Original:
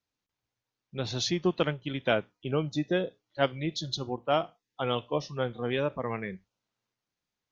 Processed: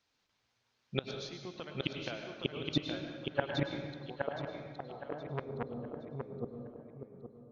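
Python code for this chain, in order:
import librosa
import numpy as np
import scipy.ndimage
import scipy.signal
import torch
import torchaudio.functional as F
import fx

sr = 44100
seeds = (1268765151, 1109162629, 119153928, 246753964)

y = fx.low_shelf(x, sr, hz=390.0, db=-6.5)
y = fx.gate_flip(y, sr, shuts_db=-26.0, range_db=-26)
y = fx.filter_sweep_lowpass(y, sr, from_hz=5200.0, to_hz=380.0, start_s=2.17, end_s=5.05, q=0.99)
y = fx.echo_feedback(y, sr, ms=818, feedback_pct=33, wet_db=-4.5)
y = fx.rev_plate(y, sr, seeds[0], rt60_s=1.5, hf_ratio=0.75, predelay_ms=90, drr_db=4.0)
y = fx.transformer_sat(y, sr, knee_hz=1100.0, at=(4.3, 6.33))
y = y * 10.0 ** (9.5 / 20.0)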